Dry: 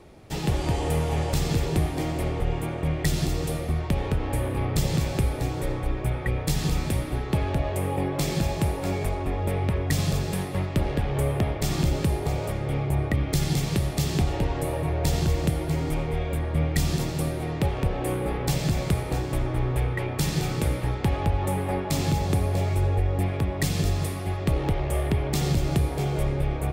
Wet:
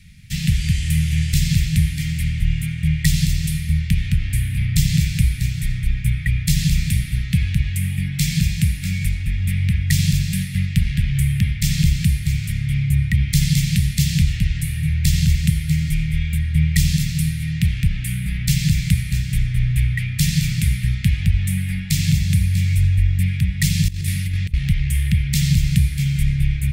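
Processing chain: elliptic band-stop 180–2000 Hz, stop band 40 dB; 23.88–24.54 negative-ratio compressor -30 dBFS, ratio -0.5; gain +8.5 dB

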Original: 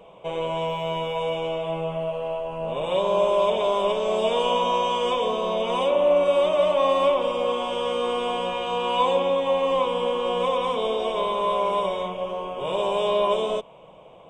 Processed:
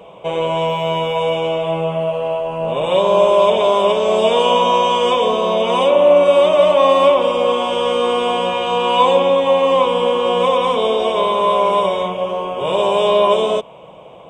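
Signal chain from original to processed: HPF 50 Hz; gain +8.5 dB

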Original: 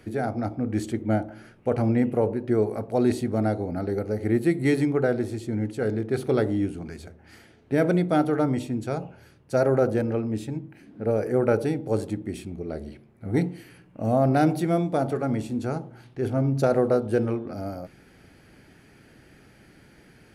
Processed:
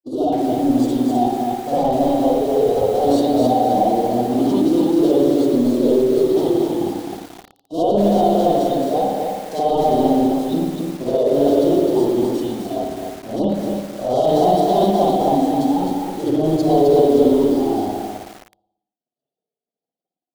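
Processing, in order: gate -49 dBFS, range -30 dB; BPF 340–7200 Hz; flange 0.18 Hz, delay 0.4 ms, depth 1.4 ms, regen -10%; bell 1100 Hz +9.5 dB 0.27 oct; sample leveller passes 5; Chebyshev band-stop 830–3600 Hz, order 3; vibrato 4.1 Hz 39 cents; reverb RT60 0.95 s, pre-delay 57 ms, DRR -8.5 dB; formant-preserving pitch shift +2.5 st; lo-fi delay 0.26 s, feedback 35%, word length 5-bit, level -3.5 dB; gain -6 dB

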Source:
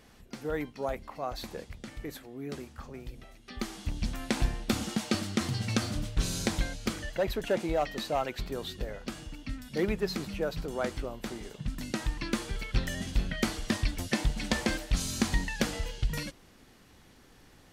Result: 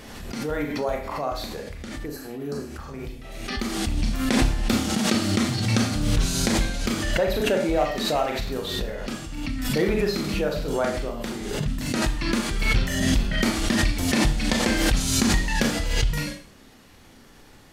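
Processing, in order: Schroeder reverb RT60 0.43 s, combs from 27 ms, DRR 1 dB; spectral repair 2.08–2.71, 1800–3900 Hz after; backwards sustainer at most 36 dB/s; gain +4 dB

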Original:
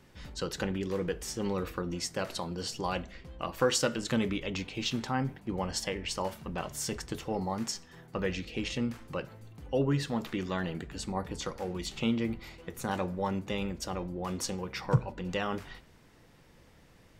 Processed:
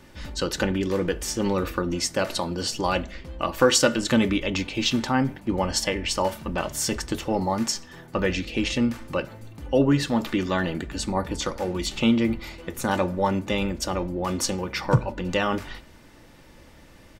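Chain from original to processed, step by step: comb 3.4 ms, depth 34%; gain +8.5 dB

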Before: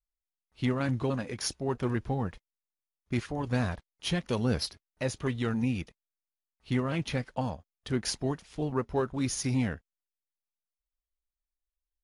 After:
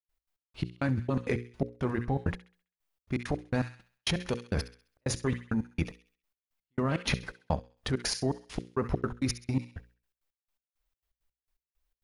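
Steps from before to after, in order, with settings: step gate ".x.x..x..xx" 166 bpm -60 dB; on a send: thin delay 66 ms, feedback 38%, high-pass 1800 Hz, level -14.5 dB; on the sum: dynamic EQ 3100 Hz, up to -5 dB, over -59 dBFS, Q 3.2; in parallel at +3 dB: negative-ratio compressor -36 dBFS, ratio -0.5; on the sum: bell 8800 Hz -6 dB 2.1 oct; notches 60/120/180/240/300/360/420/480/540 Hz

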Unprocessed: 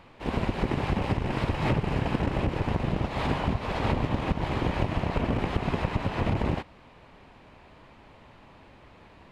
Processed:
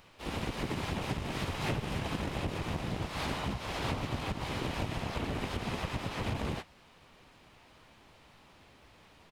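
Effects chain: pre-emphasis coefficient 0.8; harmoniser -4 st -9 dB, +4 st -4 dB; gain +4 dB

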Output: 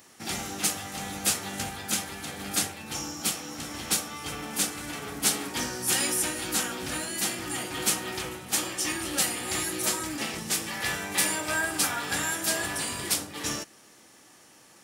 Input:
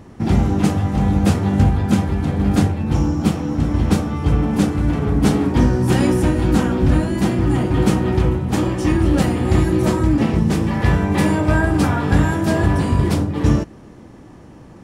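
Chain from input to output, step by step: differentiator; notch 1000 Hz, Q 15; gain +8.5 dB

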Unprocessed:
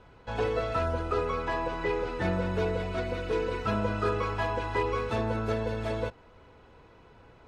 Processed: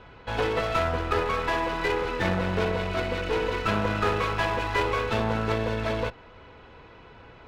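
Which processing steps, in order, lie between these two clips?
LPF 3100 Hz 12 dB/oct; high shelf 2200 Hz +11.5 dB; one-sided clip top -36 dBFS; gain +5 dB

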